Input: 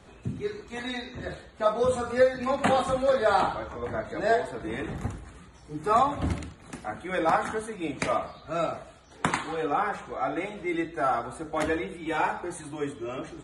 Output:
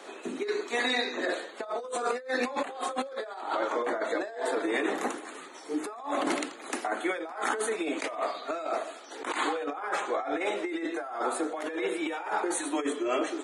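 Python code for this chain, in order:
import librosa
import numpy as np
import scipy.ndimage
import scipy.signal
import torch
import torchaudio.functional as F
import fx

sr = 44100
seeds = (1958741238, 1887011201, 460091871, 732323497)

y = scipy.signal.sosfilt(scipy.signal.butter(6, 290.0, 'highpass', fs=sr, output='sos'), x)
y = fx.over_compress(y, sr, threshold_db=-36.0, ratio=-1.0)
y = y * 10.0 ** (3.5 / 20.0)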